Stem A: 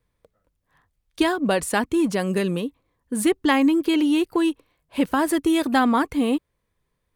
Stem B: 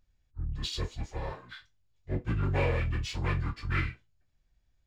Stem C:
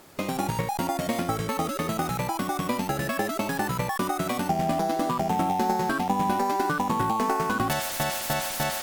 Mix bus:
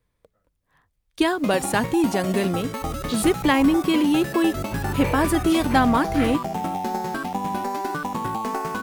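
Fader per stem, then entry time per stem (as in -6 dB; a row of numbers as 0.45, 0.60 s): 0.0, +0.5, -2.0 dB; 0.00, 2.45, 1.25 s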